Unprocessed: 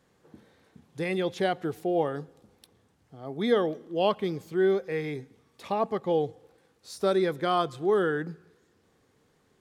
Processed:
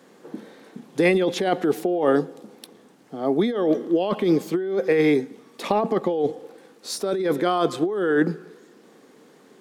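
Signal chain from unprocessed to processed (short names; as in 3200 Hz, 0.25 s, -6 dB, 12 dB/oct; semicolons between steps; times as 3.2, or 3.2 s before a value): HPF 220 Hz 24 dB/oct; low shelf 430 Hz +8 dB; negative-ratio compressor -28 dBFS, ratio -1; gain +7.5 dB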